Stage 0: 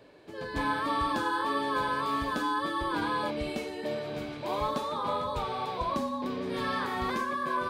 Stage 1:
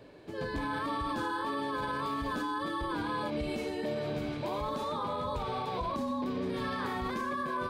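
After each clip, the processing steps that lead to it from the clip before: low shelf 290 Hz +7 dB; limiter -26 dBFS, peak gain reduction 10 dB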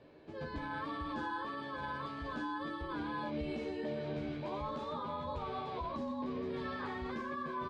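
air absorption 110 m; doubler 13 ms -4 dB; gain -6.5 dB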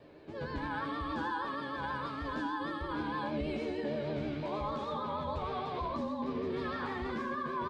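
vibrato 6.4 Hz 71 cents; echo 84 ms -9.5 dB; gain +3 dB

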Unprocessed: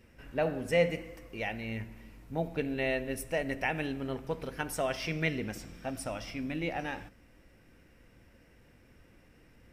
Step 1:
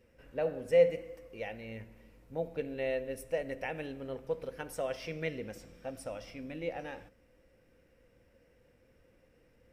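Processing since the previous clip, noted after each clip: bell 510 Hz +12 dB 0.37 oct; gain -8 dB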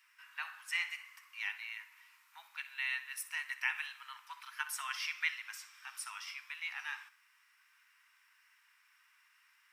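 steep high-pass 980 Hz 72 dB/oct; flutter echo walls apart 10.7 m, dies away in 0.25 s; gain +7.5 dB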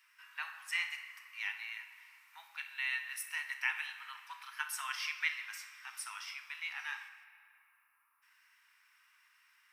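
spectral gain 7.24–8.22, 1400–9500 Hz -25 dB; notch 7100 Hz, Q 24; on a send at -8.5 dB: reverb RT60 2.7 s, pre-delay 33 ms

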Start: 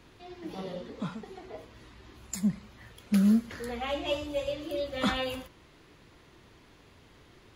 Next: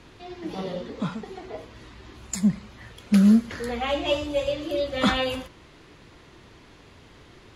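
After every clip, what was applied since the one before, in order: LPF 10000 Hz 12 dB/oct; gain +6.5 dB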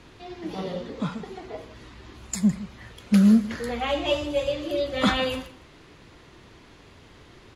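echo 0.158 s -17.5 dB

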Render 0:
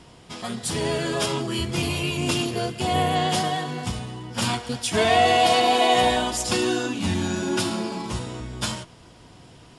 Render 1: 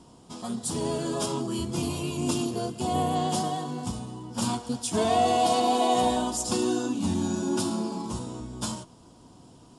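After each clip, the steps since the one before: graphic EQ 250/1000/2000/8000 Hz +8/+6/-12/+6 dB; gain -7 dB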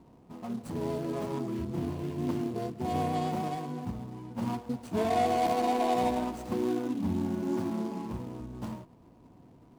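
median filter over 25 samples; gain -3 dB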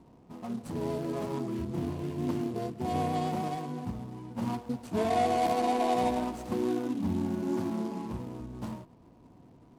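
SBC 128 kbps 48000 Hz

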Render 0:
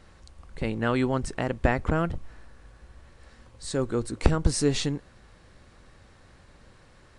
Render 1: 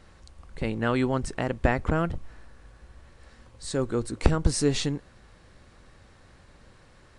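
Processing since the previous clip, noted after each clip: nothing audible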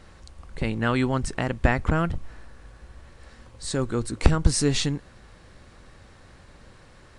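dynamic EQ 470 Hz, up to -5 dB, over -36 dBFS, Q 0.8; gain +4 dB

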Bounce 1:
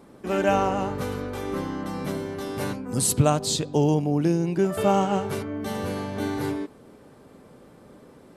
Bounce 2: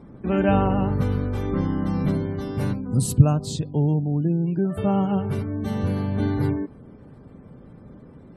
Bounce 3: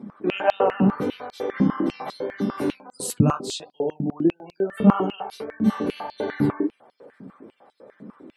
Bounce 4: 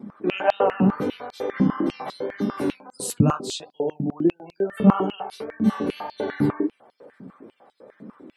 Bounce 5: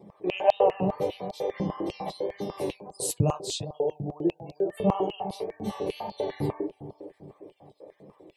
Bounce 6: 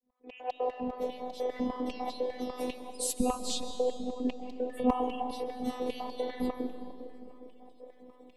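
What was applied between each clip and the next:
spectral gate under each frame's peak -30 dB strong; tone controls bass +14 dB, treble -2 dB; vocal rider 2 s; gain -5.5 dB
flange 1.6 Hz, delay 7.8 ms, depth 9.4 ms, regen -27%; stepped high-pass 10 Hz 210–4200 Hz; gain +3.5 dB
wow and flutter 29 cents
fixed phaser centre 590 Hz, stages 4; analogue delay 0.404 s, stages 2048, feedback 46%, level -13 dB
opening faded in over 1.68 s; robotiser 250 Hz; reverb RT60 2.5 s, pre-delay 0.1 s, DRR 9.5 dB

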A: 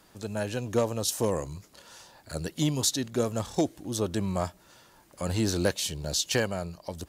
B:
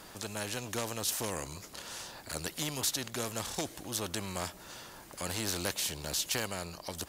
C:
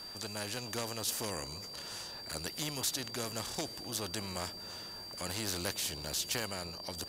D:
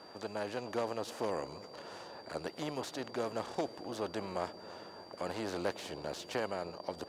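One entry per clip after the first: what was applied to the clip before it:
spectral compressor 2:1; gain -3.5 dB
analogue delay 0.318 s, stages 2048, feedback 76%, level -17 dB; whine 4700 Hz -42 dBFS; gain -2.5 dB
band-pass 560 Hz, Q 0.83; in parallel at -9 dB: crossover distortion -58 dBFS; on the sum: gain +4 dB

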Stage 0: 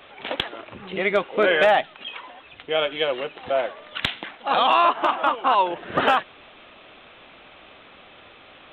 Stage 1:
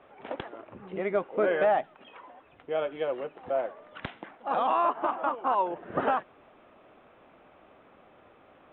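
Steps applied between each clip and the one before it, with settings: Bessel low-pass 990 Hz, order 2; low shelf 73 Hz -7.5 dB; gain -4.5 dB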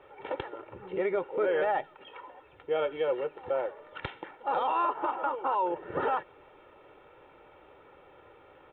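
comb 2.2 ms, depth 69%; limiter -20 dBFS, peak gain reduction 7.5 dB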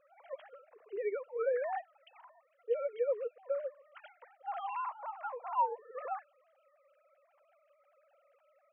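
sine-wave speech; gain -6.5 dB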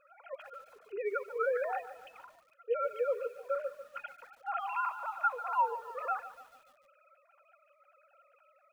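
small resonant body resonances 1400/2500 Hz, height 16 dB, ringing for 25 ms; lo-fi delay 0.145 s, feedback 55%, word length 9-bit, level -13.5 dB

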